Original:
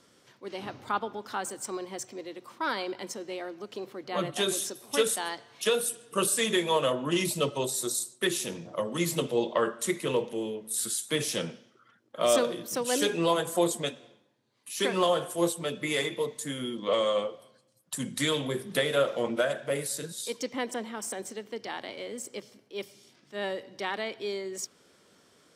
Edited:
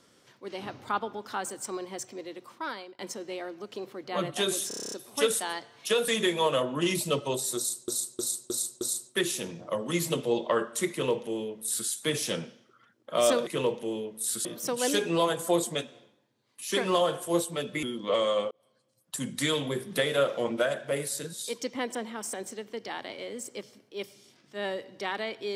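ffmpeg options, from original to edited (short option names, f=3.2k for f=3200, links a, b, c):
-filter_complex "[0:a]asplit=19[a][b][c][d][e][f][g][h][i][j][k][l][m][n][o][p][q][r][s];[a]atrim=end=2.99,asetpts=PTS-STARTPTS,afade=t=out:st=2.39:d=0.6:silence=0.0707946[t];[b]atrim=start=2.99:end=4.712,asetpts=PTS-STARTPTS,afade=t=in:d=0.004:c=hsin:silence=0.0707946[u];[c]atrim=start=4.678:end=4.712[v];[d]atrim=start=4.678:end=4.712[w];[e]atrim=start=4.678:end=4.712[x];[f]atrim=start=4.678:end=4.712[y];[g]atrim=start=4.678:end=4.712[z];[h]atrim=start=4.678:end=4.712[aa];[i]atrim=start=4.678:end=4.712[ab];[j]atrim=start=4.678:end=5.842[ac];[k]atrim=start=6.378:end=8.182[ad];[l]atrim=start=7.868:end=8.182[ae];[m]atrim=start=7.868:end=8.182[af];[n]atrim=start=7.868:end=8.182[ag];[o]atrim=start=7.868:end=12.532[ah];[p]atrim=start=9.968:end=10.952[ai];[q]atrim=start=12.528:end=15.912[aj];[r]atrim=start=16.618:end=17.3,asetpts=PTS-STARTPTS,afade=t=out:st=0.678:d=0.004:c=hsin[ak];[s]atrim=start=17.3,asetpts=PTS-STARTPTS,afade=t=in:d=0.64[al];[t][u]concat=n=2:v=0:a=1[am];[am][v]acrossfade=d=0.004:c1=hsin:c2=hsin[an];[an][w]acrossfade=d=0.004:c1=hsin:c2=hsin[ao];[ao][x]acrossfade=d=0.004:c1=hsin:c2=hsin[ap];[ap][y]acrossfade=d=0.004:c1=hsin:c2=hsin[aq];[aq][z]acrossfade=d=0.004:c1=hsin:c2=hsin[ar];[ar][aa]acrossfade=d=0.004:c1=hsin:c2=hsin[as];[as][ab]acrossfade=d=0.004:c1=hsin:c2=hsin[at];[at][ac]acrossfade=d=0.004:c1=hsin:c2=hsin[au];[au][ad]acrossfade=d=0.004:c1=hsin:c2=hsin[av];[av][ae]acrossfade=d=0.004:c1=hsin:c2=hsin[aw];[aw][af]acrossfade=d=0.004:c1=hsin:c2=hsin[ax];[ax][ag]acrossfade=d=0.004:c1=hsin:c2=hsin[ay];[ay][ah]acrossfade=d=0.004:c1=hsin:c2=hsin[az];[az][ai]acrossfade=d=0.004:c1=hsin:c2=hsin[ba];[ba][aj]acrossfade=d=0.004:c1=hsin:c2=hsin[bb];[ak][al]concat=n=2:v=0:a=1[bc];[bb][bc]acrossfade=d=0.004:c1=hsin:c2=hsin"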